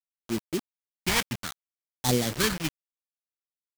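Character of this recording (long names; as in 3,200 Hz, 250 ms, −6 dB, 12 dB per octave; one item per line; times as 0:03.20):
aliases and images of a low sample rate 2,700 Hz, jitter 20%
phaser sweep stages 2, 0.63 Hz, lowest notch 430–1,400 Hz
a quantiser's noise floor 6 bits, dither none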